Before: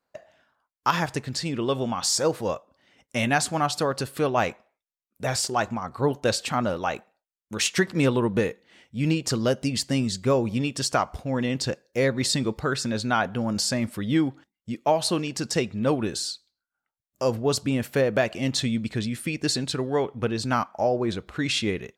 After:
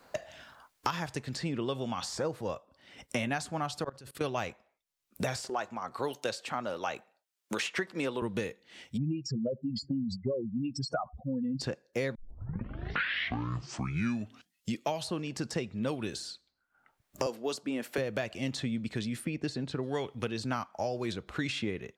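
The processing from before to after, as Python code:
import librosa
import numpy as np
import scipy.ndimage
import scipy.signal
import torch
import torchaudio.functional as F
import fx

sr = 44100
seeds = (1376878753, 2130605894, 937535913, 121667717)

y = fx.notch(x, sr, hz=6500.0, q=12.0, at=(2.47, 3.16))
y = fx.level_steps(y, sr, step_db=23, at=(3.84, 4.24))
y = fx.highpass(y, sr, hz=340.0, slope=12, at=(5.49, 8.22))
y = fx.spec_expand(y, sr, power=3.4, at=(8.96, 11.6), fade=0.02)
y = fx.highpass(y, sr, hz=260.0, slope=24, at=(17.26, 17.98))
y = fx.lowpass(y, sr, hz=1200.0, slope=6, at=(19.23, 19.82), fade=0.02)
y = fx.edit(y, sr, fx.tape_start(start_s=12.15, length_s=2.62), tone=tone)
y = fx.high_shelf(y, sr, hz=9400.0, db=-3.5)
y = fx.band_squash(y, sr, depth_pct=100)
y = F.gain(torch.from_numpy(y), -9.0).numpy()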